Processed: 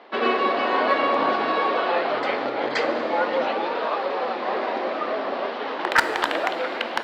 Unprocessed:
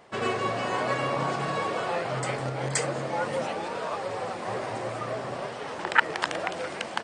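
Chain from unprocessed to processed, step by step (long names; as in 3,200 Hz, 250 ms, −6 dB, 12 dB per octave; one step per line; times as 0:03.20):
elliptic band-pass filter 250–4,100 Hz, stop band 40 dB
gain into a clipping stage and back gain 16.5 dB
convolution reverb RT60 2.0 s, pre-delay 6 ms, DRR 10 dB
level +7 dB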